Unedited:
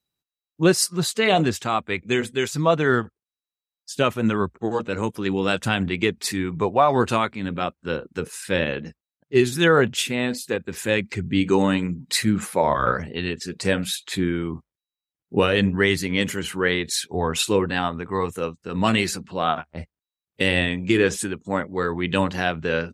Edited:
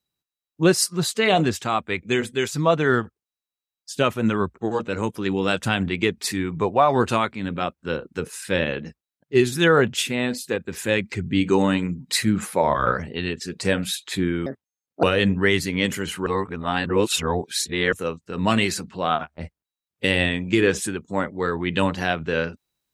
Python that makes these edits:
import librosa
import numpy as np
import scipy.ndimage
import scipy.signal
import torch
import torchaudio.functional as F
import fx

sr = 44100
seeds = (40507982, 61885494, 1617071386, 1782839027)

y = fx.edit(x, sr, fx.speed_span(start_s=14.46, length_s=0.94, speed=1.64),
    fx.reverse_span(start_s=16.63, length_s=1.66), tone=tone)